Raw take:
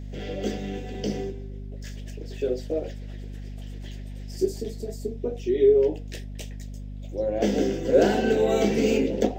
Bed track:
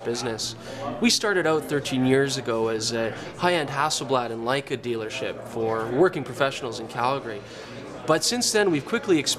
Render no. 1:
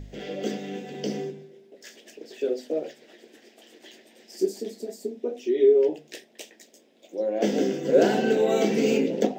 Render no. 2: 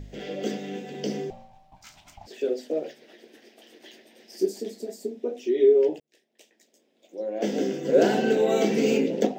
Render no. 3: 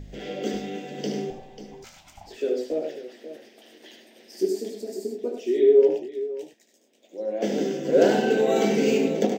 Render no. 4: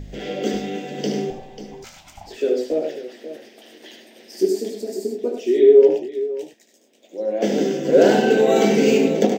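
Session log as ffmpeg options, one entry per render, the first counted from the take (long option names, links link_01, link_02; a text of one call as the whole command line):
ffmpeg -i in.wav -af "bandreject=frequency=50:width_type=h:width=4,bandreject=frequency=100:width_type=h:width=4,bandreject=frequency=150:width_type=h:width=4,bandreject=frequency=200:width_type=h:width=4,bandreject=frequency=250:width_type=h:width=4" out.wav
ffmpeg -i in.wav -filter_complex "[0:a]asettb=1/sr,asplit=3[link_01][link_02][link_03];[link_01]atrim=end=1.304[link_04];[link_02]atrim=start=1.3:end=2.27,asetpts=PTS-STARTPTS,afade=type=in:duration=0.004:curve=qsin,afade=type=out:start_time=0.966:duration=0.004:curve=qsin,aeval=exprs='val(0)*sin(2*PI*380*n/s)':channel_layout=same[link_05];[link_03]atrim=start=2.266[link_06];[link_04][link_05]acrossfade=duration=0.004:curve1=hsin:curve2=qsin[link_07];[link_07][link_06]acrossfade=duration=0.004:curve1=qsin:curve2=hsin,asettb=1/sr,asplit=3[link_08][link_09][link_10];[link_08]atrim=end=2.844[link_11];[link_09]atrim=start=2.84:end=4.49,asetpts=PTS-STARTPTS,afade=type=in:duration=0.004:curve=qsin,afade=type=out:start_time=1.646:duration=0.004:curve=qsin,equalizer=frequency=7400:width_type=o:width=0.23:gain=-8[link_12];[link_10]atrim=start=4.486[link_13];[link_11][link_12]acrossfade=duration=0.004:curve1=hsin:curve2=qsin[link_14];[link_14][link_13]acrossfade=duration=0.004:curve1=qsin:curve2=hsin,asplit=2[link_15][link_16];[link_15]atrim=end=6,asetpts=PTS-STARTPTS,afade=type=out:start_time=5.996:duration=0.004:curve=hsin[link_17];[link_16]atrim=start=6,asetpts=PTS-STARTPTS,afade=type=in:duration=2.08[link_18];[link_17][link_18]concat=n=2:v=0:a=1" out.wav
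ffmpeg -i in.wav -af "aecho=1:1:74|98|541:0.422|0.335|0.237" out.wav
ffmpeg -i in.wav -af "volume=5.5dB,alimiter=limit=-3dB:level=0:latency=1" out.wav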